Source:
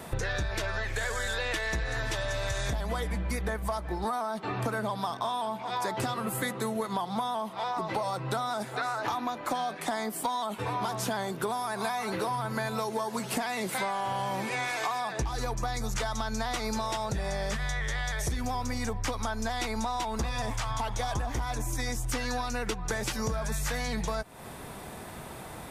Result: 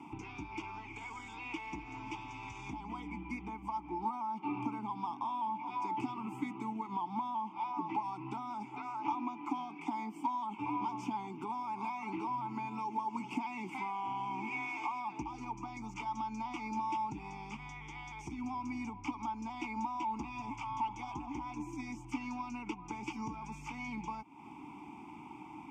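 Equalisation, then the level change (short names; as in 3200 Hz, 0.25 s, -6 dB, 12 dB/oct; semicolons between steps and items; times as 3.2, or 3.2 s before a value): vowel filter u; high shelf 9400 Hz +7 dB; fixed phaser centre 2700 Hz, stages 8; +9.0 dB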